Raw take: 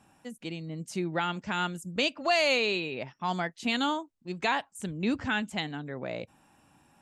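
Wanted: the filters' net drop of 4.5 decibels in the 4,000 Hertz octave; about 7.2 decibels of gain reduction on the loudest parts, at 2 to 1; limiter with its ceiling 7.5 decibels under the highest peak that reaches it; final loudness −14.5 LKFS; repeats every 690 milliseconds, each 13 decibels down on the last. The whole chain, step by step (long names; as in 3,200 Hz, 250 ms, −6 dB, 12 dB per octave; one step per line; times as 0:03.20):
parametric band 4,000 Hz −6 dB
downward compressor 2 to 1, threshold −36 dBFS
brickwall limiter −29.5 dBFS
repeating echo 690 ms, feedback 22%, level −13 dB
level +25 dB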